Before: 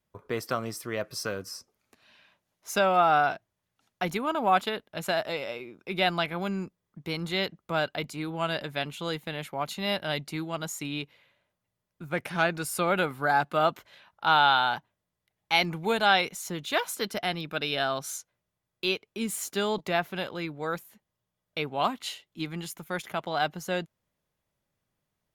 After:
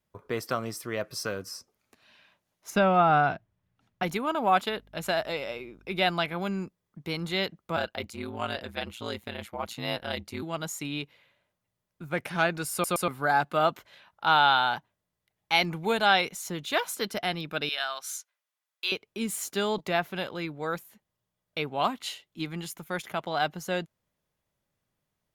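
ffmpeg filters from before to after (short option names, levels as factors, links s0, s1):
-filter_complex "[0:a]asettb=1/sr,asplit=3[s0][s1][s2];[s0]atrim=end=2.704[s3];[s1]atrim=start=2.7:end=4.03,asetpts=PTS-STARTPTS,afade=t=in:d=0.004:c=qsin,afade=t=out:st=1.326:d=0.004:c=qsin,bass=f=250:g=11,treble=f=4000:g=-10[s4];[s2]atrim=start=4.026[s5];[s3][s4]acrossfade=d=0.004:c1=hsin:c2=qsin[s6];[s6][s5]acrossfade=d=0.004:c1=qsin:c2=hsin,asettb=1/sr,asplit=3[s7][s8][s9];[s7]atrim=end=4.694[s10];[s8]atrim=start=4.69:end=5.98,asetpts=PTS-STARTPTS,afade=t=in:d=0.004:c=qsin,afade=t=out:st=1.286:d=0.004:c=qsin,aeval=exprs='val(0)+0.00126*(sin(2*PI*50*n/s)+sin(2*PI*2*50*n/s)/2+sin(2*PI*3*50*n/s)/3+sin(2*PI*4*50*n/s)/4+sin(2*PI*5*50*n/s)/5)':c=same[s11];[s9]atrim=start=5.976[s12];[s10][s11]acrossfade=d=0.004:c1=hsin:c2=qsin[s13];[s13][s12]acrossfade=d=0.004:c1=qsin:c2=hsin,asettb=1/sr,asplit=3[s14][s15][s16];[s14]atrim=end=7.764[s17];[s15]atrim=start=7.76:end=10.43,asetpts=PTS-STARTPTS,afade=t=in:d=0.004:c=qsin,afade=t=out:st=2.666:d=0.004:c=qsin,aeval=exprs='val(0)*sin(2*PI*59*n/s)':c=same[s18];[s16]atrim=start=10.426[s19];[s17][s18]acrossfade=d=0.004:c1=hsin:c2=qsin[s20];[s20][s19]acrossfade=d=0.004:c1=qsin:c2=hsin,asettb=1/sr,asplit=3[s21][s22][s23];[s21]atrim=end=17.694[s24];[s22]atrim=start=17.69:end=18.92,asetpts=PTS-STARTPTS,afade=t=in:d=0.004:c=qsin,afade=t=out:st=1.226:d=0.004:c=qsin,highpass=1100[s25];[s23]atrim=start=18.916[s26];[s24][s25]acrossfade=d=0.004:c1=hsin:c2=qsin[s27];[s27][s26]acrossfade=d=0.004:c1=qsin:c2=hsin,asplit=4[s28][s29][s30][s31];[s28]atrim=end=12.842[s32];[s29]atrim=start=12.718:end=12.842[s33];[s30]atrim=start=12.718:end=12.842[s34];[s31]atrim=start=13.078[s35];[s32][s33]acrossfade=d=0.004:c1=hsin:c2=hsin[s36];[s36][s34]acrossfade=d=0.004:c1=hsin:c2=hsin[s37];[s37][s35]acrossfade=d=0.004:c1=hsin:c2=hsin"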